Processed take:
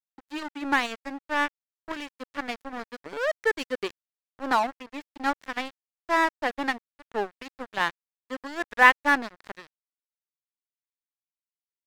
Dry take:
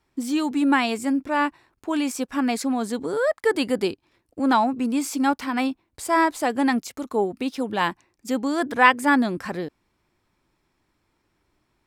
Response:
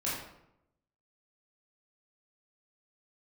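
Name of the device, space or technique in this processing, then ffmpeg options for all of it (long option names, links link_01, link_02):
pocket radio on a weak battery: -af "highpass=350,lowpass=3900,aeval=exprs='sgn(val(0))*max(abs(val(0))-0.0398,0)':channel_layout=same,equalizer=frequency=1800:width_type=o:width=0.41:gain=4.5,volume=-1dB"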